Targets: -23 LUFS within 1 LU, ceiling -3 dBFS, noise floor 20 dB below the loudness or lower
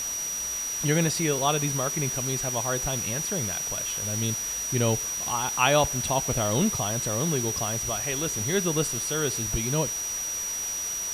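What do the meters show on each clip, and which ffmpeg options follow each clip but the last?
steady tone 5800 Hz; tone level -29 dBFS; noise floor -31 dBFS; noise floor target -46 dBFS; loudness -25.5 LUFS; peak -6.5 dBFS; loudness target -23.0 LUFS
-> -af "bandreject=f=5.8k:w=30"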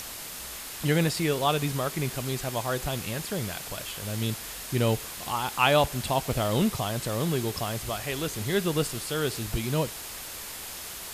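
steady tone none; noise floor -39 dBFS; noise floor target -49 dBFS
-> -af "afftdn=nr=10:nf=-39"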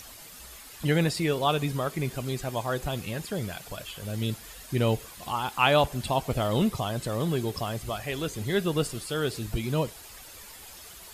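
noise floor -47 dBFS; noise floor target -49 dBFS
-> -af "afftdn=nr=6:nf=-47"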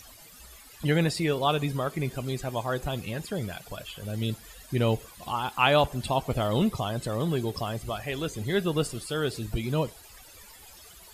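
noise floor -50 dBFS; loudness -29.0 LUFS; peak -7.5 dBFS; loudness target -23.0 LUFS
-> -af "volume=6dB,alimiter=limit=-3dB:level=0:latency=1"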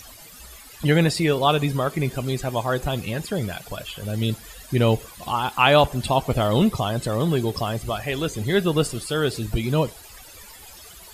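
loudness -23.0 LUFS; peak -3.0 dBFS; noise floor -44 dBFS

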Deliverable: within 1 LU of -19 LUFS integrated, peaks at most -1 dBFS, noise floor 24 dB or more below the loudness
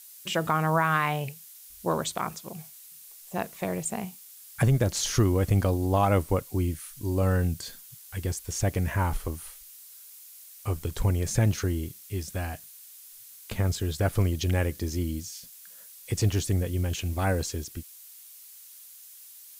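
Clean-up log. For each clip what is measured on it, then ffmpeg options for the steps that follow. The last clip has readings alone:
noise floor -49 dBFS; noise floor target -52 dBFS; loudness -28.0 LUFS; peak -12.5 dBFS; loudness target -19.0 LUFS
-> -af "afftdn=nr=6:nf=-49"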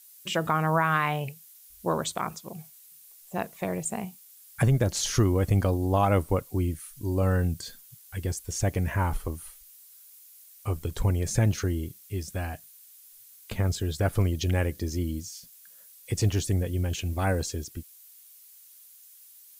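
noise floor -53 dBFS; loudness -28.0 LUFS; peak -12.5 dBFS; loudness target -19.0 LUFS
-> -af "volume=9dB"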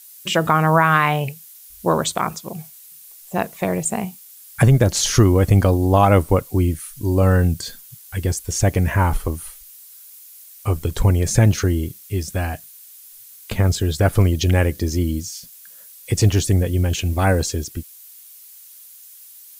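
loudness -19.0 LUFS; peak -3.5 dBFS; noise floor -44 dBFS

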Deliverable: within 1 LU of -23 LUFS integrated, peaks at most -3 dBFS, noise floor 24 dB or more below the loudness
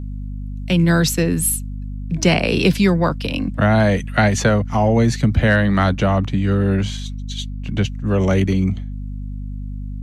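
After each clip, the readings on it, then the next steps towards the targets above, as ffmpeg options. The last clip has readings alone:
hum 50 Hz; harmonics up to 250 Hz; hum level -25 dBFS; loudness -18.0 LUFS; peak -2.0 dBFS; loudness target -23.0 LUFS
-> -af "bandreject=f=50:t=h:w=4,bandreject=f=100:t=h:w=4,bandreject=f=150:t=h:w=4,bandreject=f=200:t=h:w=4,bandreject=f=250:t=h:w=4"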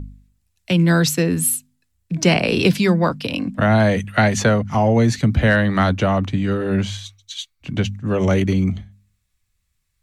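hum none; loudness -18.5 LUFS; peak -2.5 dBFS; loudness target -23.0 LUFS
-> -af "volume=-4.5dB"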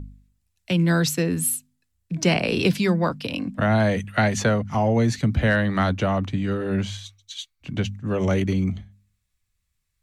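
loudness -23.0 LUFS; peak -7.0 dBFS; noise floor -75 dBFS

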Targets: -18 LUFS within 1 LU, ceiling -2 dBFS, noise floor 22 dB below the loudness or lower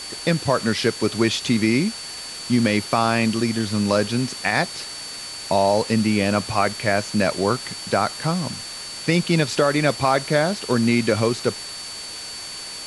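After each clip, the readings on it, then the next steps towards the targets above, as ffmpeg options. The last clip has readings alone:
steady tone 4500 Hz; tone level -34 dBFS; noise floor -34 dBFS; noise floor target -44 dBFS; loudness -21.5 LUFS; peak -5.0 dBFS; loudness target -18.0 LUFS
-> -af "bandreject=f=4.5k:w=30"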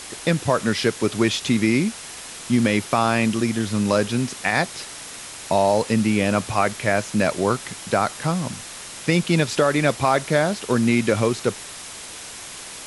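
steady tone none; noise floor -37 dBFS; noise floor target -44 dBFS
-> -af "afftdn=nr=7:nf=-37"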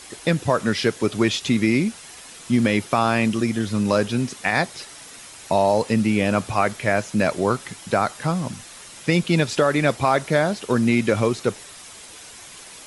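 noise floor -42 dBFS; noise floor target -44 dBFS
-> -af "afftdn=nr=6:nf=-42"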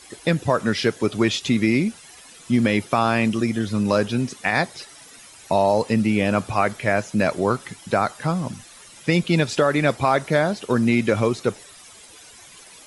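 noise floor -46 dBFS; loudness -21.5 LUFS; peak -6.0 dBFS; loudness target -18.0 LUFS
-> -af "volume=3.5dB"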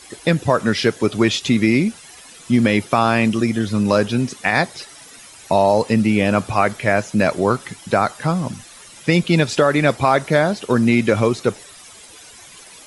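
loudness -18.0 LUFS; peak -2.5 dBFS; noise floor -42 dBFS

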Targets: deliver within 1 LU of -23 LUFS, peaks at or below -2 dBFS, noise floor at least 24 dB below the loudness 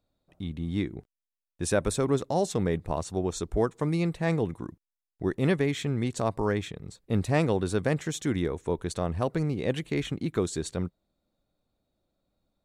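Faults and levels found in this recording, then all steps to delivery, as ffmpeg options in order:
loudness -29.0 LUFS; peak -10.5 dBFS; loudness target -23.0 LUFS
-> -af "volume=6dB"

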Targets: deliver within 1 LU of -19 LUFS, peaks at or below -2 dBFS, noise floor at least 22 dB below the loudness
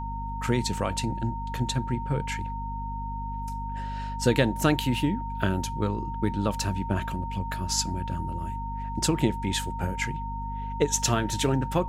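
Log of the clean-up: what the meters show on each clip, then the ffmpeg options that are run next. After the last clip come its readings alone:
hum 50 Hz; harmonics up to 250 Hz; hum level -32 dBFS; steady tone 920 Hz; tone level -34 dBFS; loudness -28.5 LUFS; peak -8.0 dBFS; loudness target -19.0 LUFS
-> -af "bandreject=f=50:t=h:w=4,bandreject=f=100:t=h:w=4,bandreject=f=150:t=h:w=4,bandreject=f=200:t=h:w=4,bandreject=f=250:t=h:w=4"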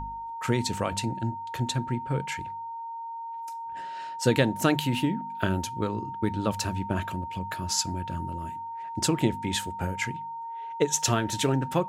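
hum none; steady tone 920 Hz; tone level -34 dBFS
-> -af "bandreject=f=920:w=30"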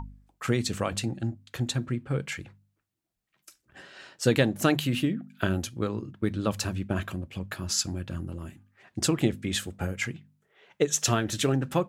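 steady tone none; loudness -29.0 LUFS; peak -8.5 dBFS; loudness target -19.0 LUFS
-> -af "volume=10dB,alimiter=limit=-2dB:level=0:latency=1"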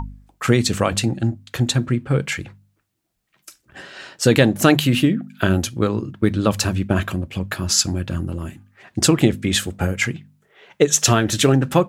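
loudness -19.5 LUFS; peak -2.0 dBFS; noise floor -68 dBFS

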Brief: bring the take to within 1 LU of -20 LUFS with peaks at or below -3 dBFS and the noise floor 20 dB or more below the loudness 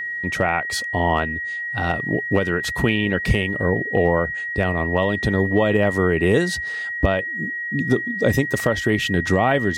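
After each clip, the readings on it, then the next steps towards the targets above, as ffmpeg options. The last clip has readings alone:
steady tone 1900 Hz; tone level -25 dBFS; loudness -20.5 LUFS; peak -4.5 dBFS; loudness target -20.0 LUFS
-> -af "bandreject=f=1.9k:w=30"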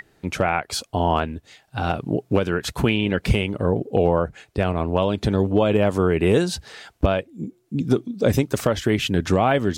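steady tone none; loudness -22.0 LUFS; peak -5.5 dBFS; loudness target -20.0 LUFS
-> -af "volume=2dB"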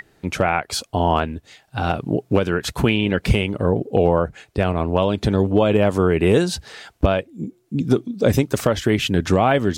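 loudness -20.0 LUFS; peak -3.5 dBFS; noise floor -59 dBFS

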